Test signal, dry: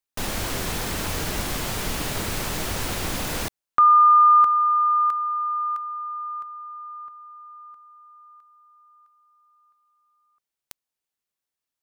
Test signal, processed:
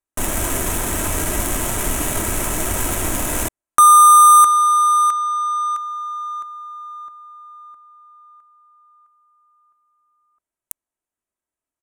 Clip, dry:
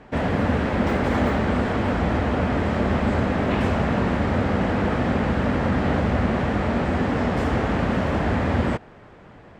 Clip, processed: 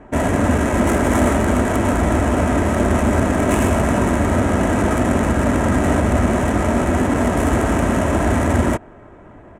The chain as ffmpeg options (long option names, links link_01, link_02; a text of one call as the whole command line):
ffmpeg -i in.wav -af "aecho=1:1:3.1:0.38,adynamicsmooth=sensitivity=2.5:basefreq=1800,aexciter=amount=13.1:drive=8.6:freq=7100,volume=5dB" out.wav